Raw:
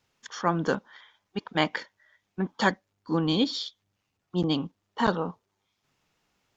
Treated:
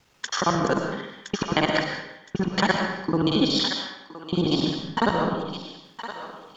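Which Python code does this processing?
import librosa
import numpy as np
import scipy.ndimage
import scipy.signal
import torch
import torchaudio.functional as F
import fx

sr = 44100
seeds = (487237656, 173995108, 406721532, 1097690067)

p1 = fx.local_reverse(x, sr, ms=46.0)
p2 = fx.over_compress(p1, sr, threshold_db=-36.0, ratio=-1.0)
p3 = p1 + (p2 * librosa.db_to_amplitude(0.0))
p4 = fx.transient(p3, sr, attack_db=1, sustain_db=-6)
p5 = fx.echo_thinned(p4, sr, ms=1017, feedback_pct=25, hz=1000.0, wet_db=-8)
p6 = fx.rev_freeverb(p5, sr, rt60_s=0.84, hf_ratio=0.8, predelay_ms=75, drr_db=3.0)
y = p6 * librosa.db_to_amplitude(1.0)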